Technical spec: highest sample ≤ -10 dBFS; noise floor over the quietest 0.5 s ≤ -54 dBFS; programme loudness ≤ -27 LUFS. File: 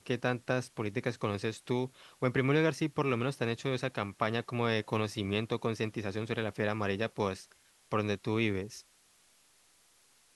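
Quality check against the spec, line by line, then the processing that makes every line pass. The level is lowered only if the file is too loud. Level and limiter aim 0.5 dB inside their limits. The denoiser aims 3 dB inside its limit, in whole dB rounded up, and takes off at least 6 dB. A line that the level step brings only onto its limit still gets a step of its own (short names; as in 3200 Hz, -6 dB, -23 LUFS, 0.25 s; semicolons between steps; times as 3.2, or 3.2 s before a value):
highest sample -14.5 dBFS: OK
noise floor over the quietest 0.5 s -66 dBFS: OK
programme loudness -33.0 LUFS: OK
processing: none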